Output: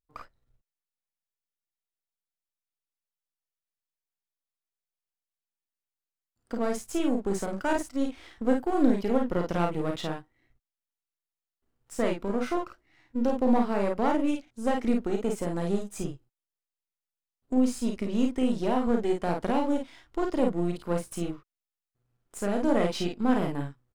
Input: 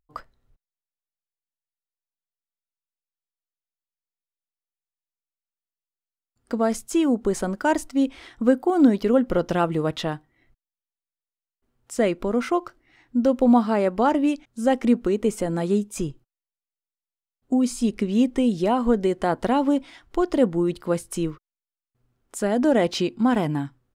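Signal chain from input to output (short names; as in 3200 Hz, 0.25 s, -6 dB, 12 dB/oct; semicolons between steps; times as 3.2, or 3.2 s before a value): half-wave gain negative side -7 dB; early reflections 35 ms -6.5 dB, 51 ms -4.5 dB; gain -5.5 dB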